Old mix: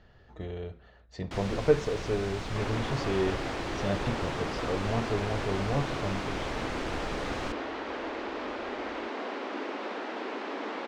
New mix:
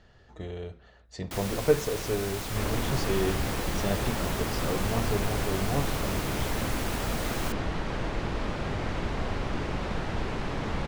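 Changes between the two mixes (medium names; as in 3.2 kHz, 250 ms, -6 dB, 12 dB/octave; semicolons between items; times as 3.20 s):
second sound: remove steep high-pass 250 Hz 48 dB/octave; master: remove distance through air 120 m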